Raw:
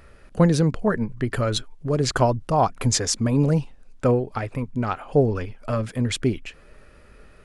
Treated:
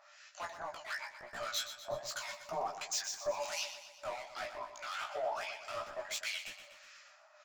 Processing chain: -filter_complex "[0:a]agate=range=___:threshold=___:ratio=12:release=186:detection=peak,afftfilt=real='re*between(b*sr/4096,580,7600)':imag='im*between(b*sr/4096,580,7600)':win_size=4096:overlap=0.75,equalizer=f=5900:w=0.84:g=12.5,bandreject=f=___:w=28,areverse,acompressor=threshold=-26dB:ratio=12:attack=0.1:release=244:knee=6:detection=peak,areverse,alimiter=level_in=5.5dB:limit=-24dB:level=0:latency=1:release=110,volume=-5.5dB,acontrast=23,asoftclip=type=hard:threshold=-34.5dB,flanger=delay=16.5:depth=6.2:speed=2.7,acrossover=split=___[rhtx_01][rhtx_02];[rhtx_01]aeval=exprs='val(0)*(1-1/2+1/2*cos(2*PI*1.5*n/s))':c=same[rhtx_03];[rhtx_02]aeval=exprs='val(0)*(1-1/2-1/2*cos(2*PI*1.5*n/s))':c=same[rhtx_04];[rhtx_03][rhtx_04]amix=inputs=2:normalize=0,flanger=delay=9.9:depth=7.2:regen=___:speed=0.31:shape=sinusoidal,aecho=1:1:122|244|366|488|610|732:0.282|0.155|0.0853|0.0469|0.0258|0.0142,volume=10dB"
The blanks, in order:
-8dB, -37dB, 4700, 1200, 32